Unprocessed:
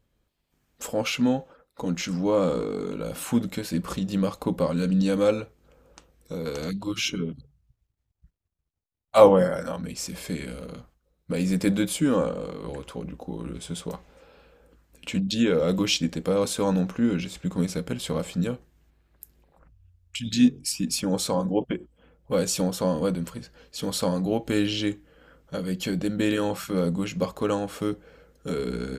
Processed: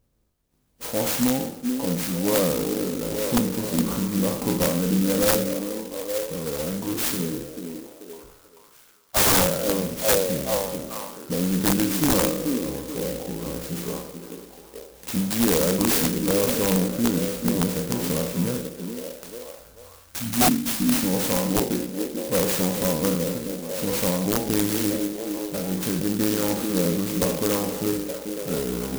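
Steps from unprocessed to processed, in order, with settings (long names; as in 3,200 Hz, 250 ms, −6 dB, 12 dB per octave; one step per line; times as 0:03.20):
peak hold with a decay on every bin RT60 0.69 s
echo through a band-pass that steps 436 ms, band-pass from 290 Hz, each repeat 0.7 octaves, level −3.5 dB
wrap-around overflow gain 12.5 dB
converter with an unsteady clock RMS 0.14 ms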